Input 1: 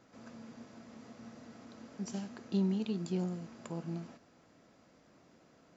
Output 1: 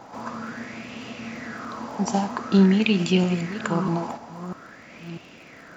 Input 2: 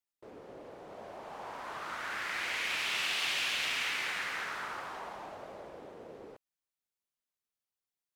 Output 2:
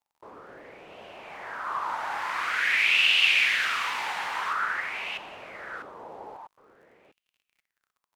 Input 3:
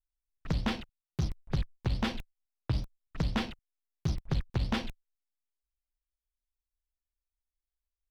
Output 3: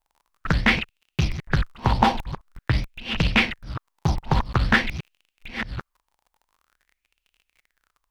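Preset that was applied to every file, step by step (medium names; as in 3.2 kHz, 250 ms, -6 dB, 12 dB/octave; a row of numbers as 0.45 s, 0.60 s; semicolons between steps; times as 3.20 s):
chunks repeated in reverse 647 ms, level -11 dB; crackle 38 per s -57 dBFS; sweeping bell 0.48 Hz 850–2800 Hz +17 dB; normalise loudness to -24 LUFS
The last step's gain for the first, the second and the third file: +14.0 dB, -0.5 dB, +8.5 dB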